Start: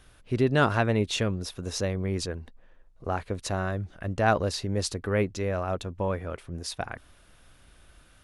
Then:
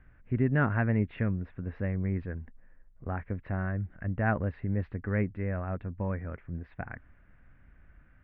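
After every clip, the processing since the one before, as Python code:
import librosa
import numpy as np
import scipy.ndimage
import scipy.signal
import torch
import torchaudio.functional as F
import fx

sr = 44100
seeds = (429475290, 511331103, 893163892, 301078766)

y = scipy.signal.sosfilt(scipy.signal.butter(6, 2000.0, 'lowpass', fs=sr, output='sos'), x)
y = fx.band_shelf(y, sr, hz=670.0, db=-8.5, octaves=2.3)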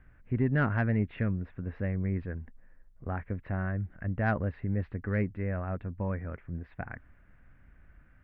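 y = 10.0 ** (-14.5 / 20.0) * np.tanh(x / 10.0 ** (-14.5 / 20.0))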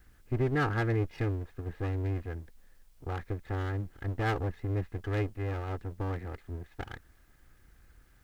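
y = fx.lower_of_two(x, sr, delay_ms=2.4)
y = fx.quant_dither(y, sr, seeds[0], bits=12, dither='triangular')
y = y * 10.0 ** (-1.0 / 20.0)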